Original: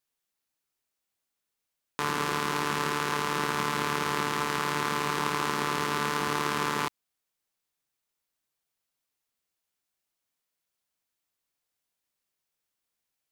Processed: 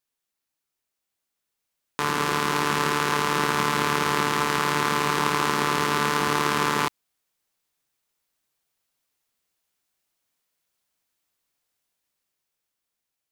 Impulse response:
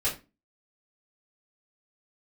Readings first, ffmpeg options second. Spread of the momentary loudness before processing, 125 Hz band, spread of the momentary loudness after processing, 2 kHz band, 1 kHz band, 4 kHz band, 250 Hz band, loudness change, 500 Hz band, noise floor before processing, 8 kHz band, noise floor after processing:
1 LU, +5.5 dB, 2 LU, +5.5 dB, +5.5 dB, +5.5 dB, +5.5 dB, +5.5 dB, +5.5 dB, -85 dBFS, +5.5 dB, -84 dBFS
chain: -af "dynaudnorm=f=390:g=9:m=6dB"

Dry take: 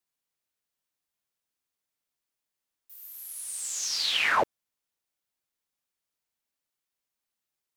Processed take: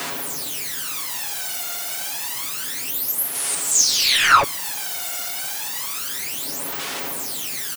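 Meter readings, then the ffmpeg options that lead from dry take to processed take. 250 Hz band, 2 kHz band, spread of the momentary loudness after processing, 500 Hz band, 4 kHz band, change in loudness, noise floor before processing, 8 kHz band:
+11.5 dB, +9.5 dB, 10 LU, +5.5 dB, +11.0 dB, +6.0 dB, under -85 dBFS, +16.0 dB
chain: -af "aeval=exprs='val(0)+0.5*0.0237*sgn(val(0))':c=same,highpass=190,aecho=1:1:7.2:0.59,asoftclip=type=hard:threshold=-22dB,aphaser=in_gain=1:out_gain=1:delay=1.4:decay=0.69:speed=0.29:type=sinusoidal,volume=8dB"

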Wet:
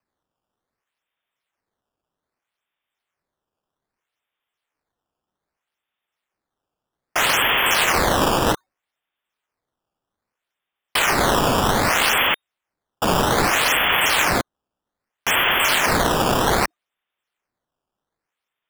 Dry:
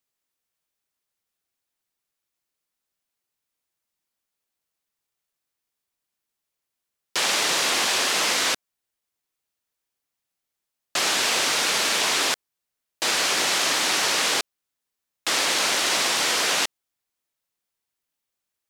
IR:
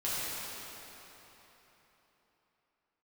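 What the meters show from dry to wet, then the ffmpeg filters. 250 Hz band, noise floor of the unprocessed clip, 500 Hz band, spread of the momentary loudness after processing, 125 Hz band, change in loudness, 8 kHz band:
+11.5 dB, -84 dBFS, +8.5 dB, 8 LU, +20.5 dB, +3.0 dB, -3.0 dB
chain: -af "lowpass=f=3.1k:t=q:w=0.5098,lowpass=f=3.1k:t=q:w=0.6013,lowpass=f=3.1k:t=q:w=0.9,lowpass=f=3.1k:t=q:w=2.563,afreqshift=-3700,acrusher=samples=12:mix=1:aa=0.000001:lfo=1:lforange=19.2:lforate=0.63,volume=7.5dB"

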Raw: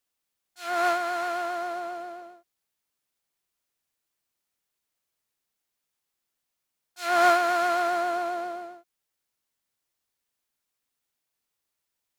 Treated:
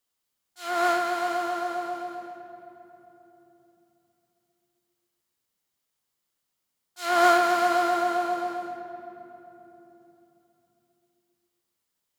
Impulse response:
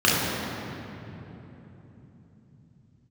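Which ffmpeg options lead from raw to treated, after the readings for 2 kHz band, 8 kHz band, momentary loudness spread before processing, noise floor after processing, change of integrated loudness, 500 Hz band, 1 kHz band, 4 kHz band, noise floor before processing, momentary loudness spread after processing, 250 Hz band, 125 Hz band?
0.0 dB, +2.0 dB, 19 LU, -81 dBFS, +1.0 dB, +1.0 dB, +1.5 dB, +2.0 dB, -83 dBFS, 20 LU, +4.5 dB, n/a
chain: -filter_complex "[0:a]asplit=2[a][b];[1:a]atrim=start_sample=2205,highshelf=f=5.6k:g=11[c];[b][c]afir=irnorm=-1:irlink=0,volume=-25dB[d];[a][d]amix=inputs=2:normalize=0"

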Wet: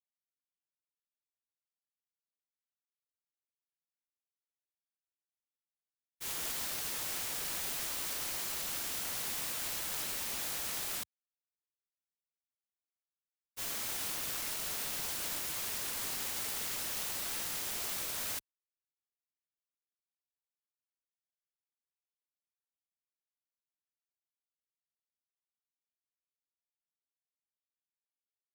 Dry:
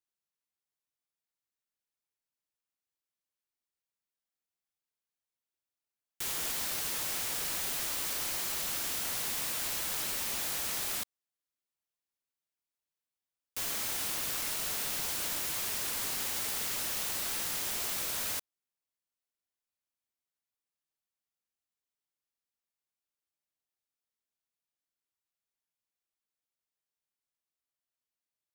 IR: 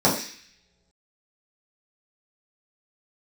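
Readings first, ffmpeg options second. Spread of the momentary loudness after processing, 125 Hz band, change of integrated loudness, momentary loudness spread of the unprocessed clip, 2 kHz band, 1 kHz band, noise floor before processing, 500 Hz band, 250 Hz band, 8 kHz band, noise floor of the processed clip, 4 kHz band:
2 LU, -3.0 dB, -3.0 dB, 1 LU, -3.0 dB, -3.0 dB, under -85 dBFS, -3.0 dB, -3.0 dB, -3.0 dB, under -85 dBFS, -3.0 dB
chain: -af "afwtdn=0.00501,agate=range=-33dB:threshold=-31dB:ratio=3:detection=peak"

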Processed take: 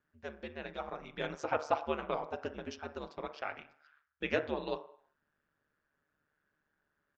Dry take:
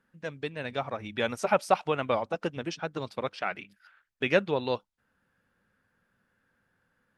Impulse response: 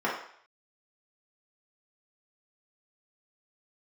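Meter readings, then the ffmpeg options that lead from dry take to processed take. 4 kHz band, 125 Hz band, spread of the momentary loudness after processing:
-9.0 dB, -11.0 dB, 11 LU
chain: -filter_complex "[0:a]aresample=16000,aresample=44100,asplit=2[a][b];[1:a]atrim=start_sample=2205[c];[b][c]afir=irnorm=-1:irlink=0,volume=-18dB[d];[a][d]amix=inputs=2:normalize=0,aeval=exprs='val(0)*sin(2*PI*74*n/s)':c=same,volume=-7dB"

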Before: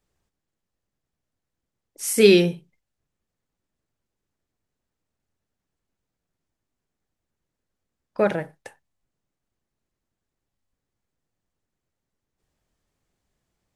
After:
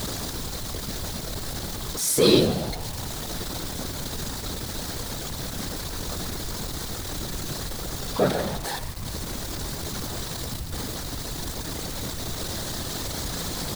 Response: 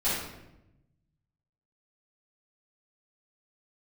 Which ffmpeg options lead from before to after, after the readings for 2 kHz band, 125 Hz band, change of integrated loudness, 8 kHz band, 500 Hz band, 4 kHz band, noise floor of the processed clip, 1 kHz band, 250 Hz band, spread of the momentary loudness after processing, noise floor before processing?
-1.5 dB, +6.0 dB, -9.0 dB, +7.5 dB, -3.0 dB, +6.0 dB, -34 dBFS, +7.0 dB, -0.5 dB, 8 LU, -84 dBFS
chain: -filter_complex "[0:a]aeval=exprs='val(0)+0.5*0.0794*sgn(val(0))':c=same,highshelf=f=3.2k:t=q:w=3:g=6,acrossover=split=2800[a][b];[a]acontrast=66[c];[c][b]amix=inputs=2:normalize=0,afftfilt=real='hypot(re,im)*cos(2*PI*random(0))':imag='hypot(re,im)*sin(2*PI*random(1))':win_size=512:overlap=0.75,asplit=6[d][e][f][g][h][i];[e]adelay=140,afreqshift=120,volume=-15dB[j];[f]adelay=280,afreqshift=240,volume=-20.5dB[k];[g]adelay=420,afreqshift=360,volume=-26dB[l];[h]adelay=560,afreqshift=480,volume=-31.5dB[m];[i]adelay=700,afreqshift=600,volume=-37.1dB[n];[d][j][k][l][m][n]amix=inputs=6:normalize=0,acrusher=bits=5:mix=0:aa=0.000001,volume=-3dB"

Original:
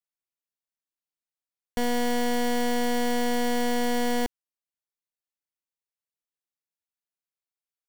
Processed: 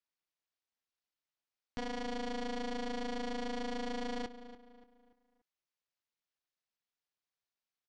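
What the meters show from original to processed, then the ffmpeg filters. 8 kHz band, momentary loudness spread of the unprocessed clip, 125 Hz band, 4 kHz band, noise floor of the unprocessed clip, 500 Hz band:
-19.0 dB, 4 LU, n/a, -12.0 dB, under -85 dBFS, -12.5 dB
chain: -filter_complex "[0:a]lowpass=f=5.9k:w=0.5412,lowpass=f=5.9k:w=1.3066,lowshelf=f=430:g=-4,acompressor=threshold=-41dB:ratio=6,tremolo=f=270:d=0.919,asplit=2[a][b];[b]adelay=289,lowpass=f=3.2k:p=1,volume=-13dB,asplit=2[c][d];[d]adelay=289,lowpass=f=3.2k:p=1,volume=0.4,asplit=2[e][f];[f]adelay=289,lowpass=f=3.2k:p=1,volume=0.4,asplit=2[g][h];[h]adelay=289,lowpass=f=3.2k:p=1,volume=0.4[i];[c][e][g][i]amix=inputs=4:normalize=0[j];[a][j]amix=inputs=2:normalize=0,volume=6dB"

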